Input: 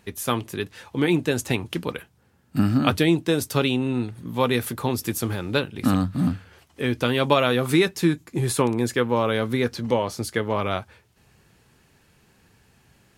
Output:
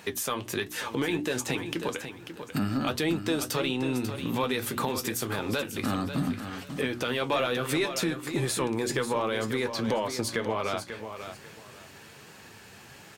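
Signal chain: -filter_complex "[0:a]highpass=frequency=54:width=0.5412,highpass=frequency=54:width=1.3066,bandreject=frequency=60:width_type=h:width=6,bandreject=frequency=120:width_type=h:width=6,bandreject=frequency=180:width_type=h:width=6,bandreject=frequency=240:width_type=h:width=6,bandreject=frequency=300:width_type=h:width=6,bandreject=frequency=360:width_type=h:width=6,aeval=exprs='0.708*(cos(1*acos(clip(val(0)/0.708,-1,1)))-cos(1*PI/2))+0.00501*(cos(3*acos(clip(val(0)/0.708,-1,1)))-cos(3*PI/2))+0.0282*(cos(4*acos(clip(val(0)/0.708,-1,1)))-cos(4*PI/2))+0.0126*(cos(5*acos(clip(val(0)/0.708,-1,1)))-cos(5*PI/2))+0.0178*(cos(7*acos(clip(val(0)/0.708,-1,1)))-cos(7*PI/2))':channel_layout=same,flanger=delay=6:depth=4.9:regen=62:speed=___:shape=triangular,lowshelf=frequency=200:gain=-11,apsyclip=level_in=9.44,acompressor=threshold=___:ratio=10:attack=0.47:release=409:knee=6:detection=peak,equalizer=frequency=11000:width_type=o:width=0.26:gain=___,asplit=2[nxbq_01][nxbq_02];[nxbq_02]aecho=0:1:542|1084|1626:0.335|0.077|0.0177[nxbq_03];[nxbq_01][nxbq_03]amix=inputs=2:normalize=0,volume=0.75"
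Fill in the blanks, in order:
1.3, 0.112, -7.5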